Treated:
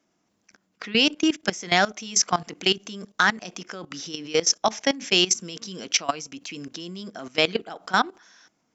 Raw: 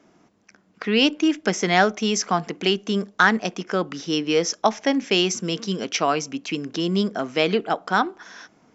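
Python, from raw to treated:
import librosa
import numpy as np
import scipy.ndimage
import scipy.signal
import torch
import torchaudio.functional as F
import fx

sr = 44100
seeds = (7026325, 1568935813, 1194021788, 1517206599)

y = fx.high_shelf(x, sr, hz=3300.0, db=11.0)
y = fx.notch(y, sr, hz=420.0, q=13.0)
y = fx.level_steps(y, sr, step_db=18)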